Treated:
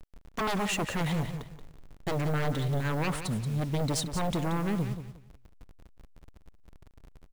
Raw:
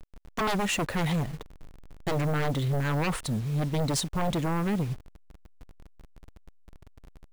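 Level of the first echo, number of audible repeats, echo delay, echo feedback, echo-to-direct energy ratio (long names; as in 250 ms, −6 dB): −10.0 dB, 2, 179 ms, 23%, −10.0 dB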